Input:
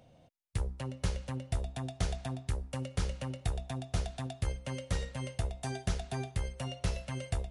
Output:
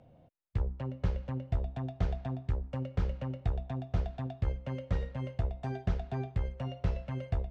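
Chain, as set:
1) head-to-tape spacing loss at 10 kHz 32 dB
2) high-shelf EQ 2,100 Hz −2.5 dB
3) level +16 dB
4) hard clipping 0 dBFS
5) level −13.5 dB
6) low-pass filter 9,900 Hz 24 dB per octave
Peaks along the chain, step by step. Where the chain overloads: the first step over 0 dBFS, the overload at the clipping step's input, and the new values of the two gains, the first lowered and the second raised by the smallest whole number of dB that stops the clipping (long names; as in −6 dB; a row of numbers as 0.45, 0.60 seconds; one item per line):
−20.5, −20.5, −4.5, −4.5, −18.0, −18.0 dBFS
no step passes full scale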